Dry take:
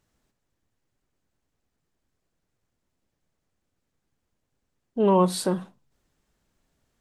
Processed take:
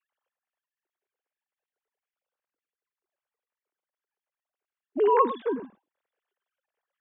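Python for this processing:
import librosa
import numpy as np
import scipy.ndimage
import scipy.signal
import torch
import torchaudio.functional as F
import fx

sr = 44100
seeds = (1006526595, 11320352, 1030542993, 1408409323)

y = fx.sine_speech(x, sr)
y = y + 10.0 ** (-12.5 / 20.0) * np.pad(y, (int(103 * sr / 1000.0), 0))[:len(y)]
y = F.gain(torch.from_numpy(y), -2.0).numpy()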